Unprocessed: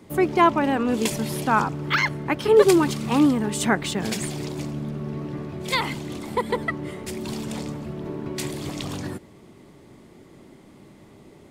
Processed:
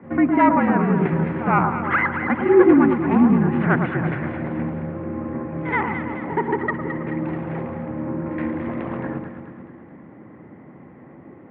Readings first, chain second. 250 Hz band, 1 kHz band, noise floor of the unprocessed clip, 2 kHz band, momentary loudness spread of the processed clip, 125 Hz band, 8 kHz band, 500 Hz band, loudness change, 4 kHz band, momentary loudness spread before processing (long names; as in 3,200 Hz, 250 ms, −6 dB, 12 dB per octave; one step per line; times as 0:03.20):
+5.0 dB, +2.5 dB, −50 dBFS, +2.5 dB, 13 LU, +5.0 dB, below −40 dB, +0.5 dB, +3.0 dB, below −15 dB, 14 LU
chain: stylus tracing distortion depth 0.28 ms
in parallel at −7.5 dB: hard clipping −19 dBFS, distortion −8 dB
on the sum: echo ahead of the sound 72 ms −13 dB
single-sideband voice off tune −58 Hz 190–2,100 Hz
dynamic equaliser 610 Hz, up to −6 dB, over −32 dBFS, Q 1.1
on a send: delay that swaps between a low-pass and a high-pass 108 ms, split 1,300 Hz, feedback 72%, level −5 dB
on the sum: level +2 dB